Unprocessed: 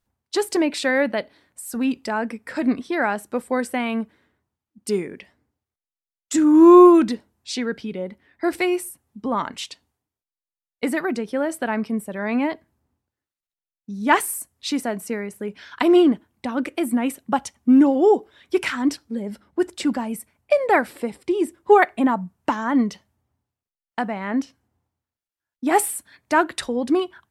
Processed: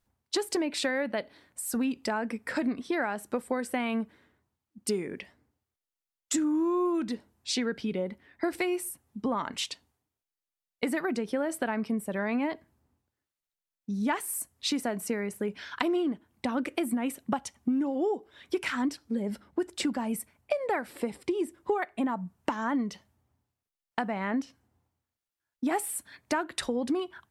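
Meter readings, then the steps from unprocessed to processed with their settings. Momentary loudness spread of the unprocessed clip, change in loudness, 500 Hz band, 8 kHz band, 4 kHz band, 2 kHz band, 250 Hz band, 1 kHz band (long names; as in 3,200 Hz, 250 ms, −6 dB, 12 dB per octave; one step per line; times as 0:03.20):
15 LU, −10.5 dB, −11.0 dB, −4.5 dB, −3.5 dB, −8.5 dB, −10.5 dB, −11.5 dB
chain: downward compressor 8 to 1, threshold −26 dBFS, peak gain reduction 19 dB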